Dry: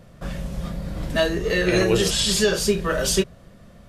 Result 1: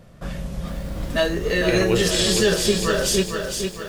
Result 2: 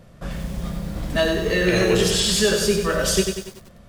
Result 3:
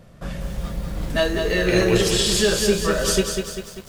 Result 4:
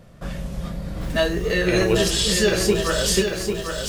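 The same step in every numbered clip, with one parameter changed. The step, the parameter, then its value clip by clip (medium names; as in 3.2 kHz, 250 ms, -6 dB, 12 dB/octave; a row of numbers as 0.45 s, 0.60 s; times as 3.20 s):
bit-crushed delay, time: 458 ms, 95 ms, 197 ms, 796 ms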